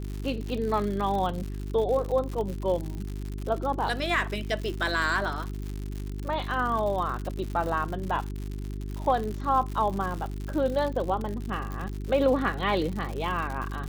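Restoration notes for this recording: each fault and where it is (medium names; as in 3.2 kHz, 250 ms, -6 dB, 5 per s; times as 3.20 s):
crackle 120 per s -32 dBFS
hum 50 Hz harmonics 8 -34 dBFS
11.72 s: pop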